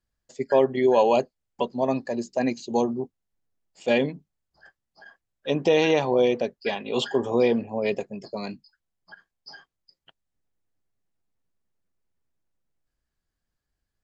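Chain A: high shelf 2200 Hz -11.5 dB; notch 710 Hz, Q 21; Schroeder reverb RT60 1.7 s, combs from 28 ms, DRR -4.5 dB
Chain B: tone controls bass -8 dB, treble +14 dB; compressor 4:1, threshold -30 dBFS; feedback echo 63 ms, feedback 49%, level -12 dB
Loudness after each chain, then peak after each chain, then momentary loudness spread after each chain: -19.5, -34.0 LUFS; -2.5, -16.5 dBFS; 18, 18 LU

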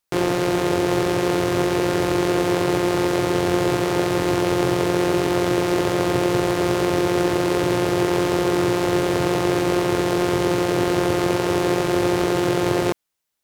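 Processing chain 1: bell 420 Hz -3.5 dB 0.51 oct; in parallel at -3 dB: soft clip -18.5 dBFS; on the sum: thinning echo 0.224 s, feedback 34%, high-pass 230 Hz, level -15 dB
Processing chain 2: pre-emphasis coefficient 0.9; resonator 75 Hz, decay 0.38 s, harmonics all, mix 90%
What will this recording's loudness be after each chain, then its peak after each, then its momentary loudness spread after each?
-18.0, -42.0 LUFS; -4.0, -22.5 dBFS; 1, 0 LU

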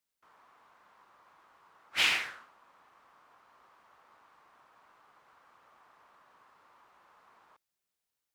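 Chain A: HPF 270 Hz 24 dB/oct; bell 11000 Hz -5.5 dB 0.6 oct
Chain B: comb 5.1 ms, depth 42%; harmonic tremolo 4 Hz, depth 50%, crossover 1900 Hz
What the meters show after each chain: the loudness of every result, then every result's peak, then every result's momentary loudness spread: -29.0, -31.0 LUFS; -14.0, -16.5 dBFS; 12, 13 LU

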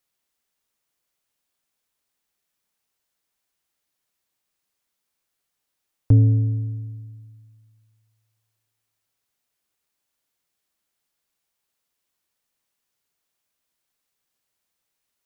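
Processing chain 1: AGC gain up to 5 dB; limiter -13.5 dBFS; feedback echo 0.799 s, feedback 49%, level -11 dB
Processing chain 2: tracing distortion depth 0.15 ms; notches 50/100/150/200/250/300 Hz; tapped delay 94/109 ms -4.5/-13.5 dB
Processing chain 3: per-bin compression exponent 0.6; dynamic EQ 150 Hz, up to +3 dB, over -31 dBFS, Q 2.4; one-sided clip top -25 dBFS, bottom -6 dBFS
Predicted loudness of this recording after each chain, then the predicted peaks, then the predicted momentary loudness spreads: -25.5, -20.0, -23.5 LUFS; -13.5, -7.0, -6.0 dBFS; 22, 19, 21 LU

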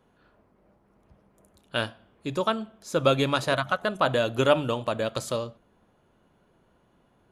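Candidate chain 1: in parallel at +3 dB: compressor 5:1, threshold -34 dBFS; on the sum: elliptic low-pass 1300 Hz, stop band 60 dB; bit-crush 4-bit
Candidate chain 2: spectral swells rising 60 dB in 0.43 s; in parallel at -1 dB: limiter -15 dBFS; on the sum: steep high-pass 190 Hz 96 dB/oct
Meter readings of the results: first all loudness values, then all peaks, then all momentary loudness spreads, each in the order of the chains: -24.0, -21.0 LUFS; -7.5, -3.5 dBFS; 11, 9 LU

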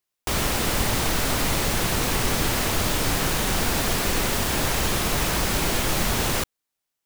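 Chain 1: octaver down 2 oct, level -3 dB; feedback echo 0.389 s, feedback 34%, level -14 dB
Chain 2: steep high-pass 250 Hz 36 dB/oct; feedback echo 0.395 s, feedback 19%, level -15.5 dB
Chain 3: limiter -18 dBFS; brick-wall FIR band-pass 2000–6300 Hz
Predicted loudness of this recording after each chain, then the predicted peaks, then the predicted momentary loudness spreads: -22.5, -23.5, -33.0 LUFS; -8.5, -10.5, -22.0 dBFS; 2, 2, 1 LU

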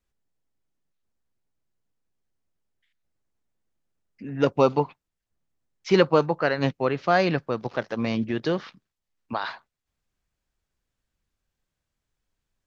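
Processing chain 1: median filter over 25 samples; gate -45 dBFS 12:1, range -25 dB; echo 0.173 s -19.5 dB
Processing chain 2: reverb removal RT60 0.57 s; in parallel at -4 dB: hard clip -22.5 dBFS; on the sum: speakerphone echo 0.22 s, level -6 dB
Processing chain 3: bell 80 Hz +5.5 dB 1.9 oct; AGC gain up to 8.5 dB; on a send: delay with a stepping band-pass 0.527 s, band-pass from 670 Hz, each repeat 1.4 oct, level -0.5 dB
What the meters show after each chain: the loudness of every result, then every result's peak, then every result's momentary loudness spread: -25.5, -22.0, -19.0 LUFS; -7.0, -4.5, -1.5 dBFS; 13, 15, 17 LU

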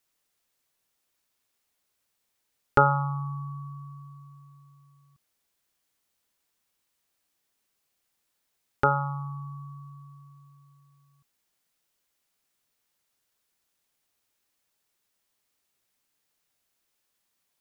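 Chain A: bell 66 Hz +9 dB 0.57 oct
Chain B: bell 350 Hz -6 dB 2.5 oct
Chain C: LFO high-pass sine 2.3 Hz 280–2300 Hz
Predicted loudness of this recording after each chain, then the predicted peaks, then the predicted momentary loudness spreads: -27.5, -30.0, -23.0 LUFS; -3.5, -6.5, -3.0 dBFS; 23, 22, 21 LU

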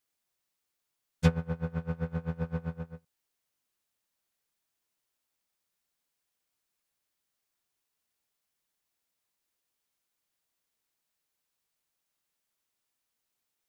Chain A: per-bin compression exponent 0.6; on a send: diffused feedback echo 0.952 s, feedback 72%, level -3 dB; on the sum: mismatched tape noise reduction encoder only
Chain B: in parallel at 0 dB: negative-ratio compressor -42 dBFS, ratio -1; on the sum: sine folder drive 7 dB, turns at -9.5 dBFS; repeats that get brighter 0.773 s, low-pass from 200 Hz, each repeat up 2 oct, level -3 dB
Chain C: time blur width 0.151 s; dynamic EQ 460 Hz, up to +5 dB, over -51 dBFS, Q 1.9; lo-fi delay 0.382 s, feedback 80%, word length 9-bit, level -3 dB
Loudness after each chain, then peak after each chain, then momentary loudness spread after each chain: -31.0, -25.5, -33.0 LUFS; -9.5, -8.5, -20.0 dBFS; 23, 21, 18 LU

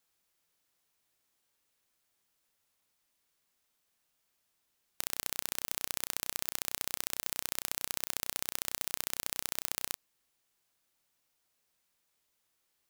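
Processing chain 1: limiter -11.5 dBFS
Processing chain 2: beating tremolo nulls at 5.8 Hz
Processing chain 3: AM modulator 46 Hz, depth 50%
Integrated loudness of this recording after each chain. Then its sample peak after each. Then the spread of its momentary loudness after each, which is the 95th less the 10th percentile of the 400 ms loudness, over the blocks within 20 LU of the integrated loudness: -40.5, -38.0, -38.0 LUFS; -11.5, -4.5, -4.5 dBFS; 1, 2, 4 LU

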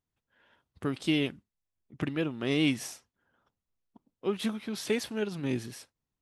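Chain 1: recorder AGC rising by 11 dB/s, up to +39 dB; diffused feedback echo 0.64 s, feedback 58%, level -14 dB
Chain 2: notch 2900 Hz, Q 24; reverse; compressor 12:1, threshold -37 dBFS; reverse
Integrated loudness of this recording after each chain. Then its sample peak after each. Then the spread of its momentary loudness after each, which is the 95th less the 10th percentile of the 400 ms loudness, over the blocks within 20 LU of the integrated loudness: -32.0, -42.5 LUFS; -14.0, -27.5 dBFS; 17, 9 LU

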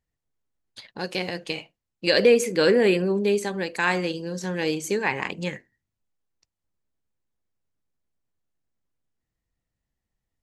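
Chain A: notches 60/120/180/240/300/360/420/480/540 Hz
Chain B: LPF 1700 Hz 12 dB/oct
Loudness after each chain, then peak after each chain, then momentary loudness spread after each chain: -24.5, -24.5 LUFS; -6.0, -7.5 dBFS; 14, 15 LU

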